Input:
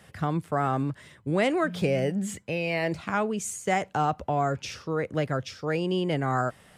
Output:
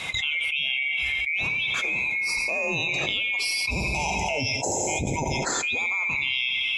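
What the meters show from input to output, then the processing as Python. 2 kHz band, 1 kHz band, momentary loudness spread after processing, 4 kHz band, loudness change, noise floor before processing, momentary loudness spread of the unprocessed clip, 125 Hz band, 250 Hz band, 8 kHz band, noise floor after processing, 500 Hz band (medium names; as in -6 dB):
+11.0 dB, -4.0 dB, 2 LU, +13.5 dB, +4.0 dB, -56 dBFS, 5 LU, -5.0 dB, -7.5 dB, +9.0 dB, -29 dBFS, -6.0 dB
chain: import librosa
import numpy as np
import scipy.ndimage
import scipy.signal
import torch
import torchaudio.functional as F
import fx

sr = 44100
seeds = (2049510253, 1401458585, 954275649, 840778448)

y = fx.band_swap(x, sr, width_hz=2000)
y = scipy.signal.sosfilt(scipy.signal.butter(2, 47.0, 'highpass', fs=sr, output='sos'), y)
y = fx.spec_box(y, sr, start_s=3.71, length_s=1.73, low_hz=980.0, high_hz=5000.0, gain_db=-21)
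y = fx.noise_reduce_blind(y, sr, reduce_db=13)
y = scipy.signal.sosfilt(scipy.signal.butter(2, 7400.0, 'lowpass', fs=sr, output='sos'), y)
y = fx.echo_feedback(y, sr, ms=86, feedback_pct=52, wet_db=-14.0)
y = fx.rev_gated(y, sr, seeds[0], gate_ms=490, shape='falling', drr_db=11.0)
y = fx.env_flatten(y, sr, amount_pct=100)
y = y * 10.0 ** (-5.0 / 20.0)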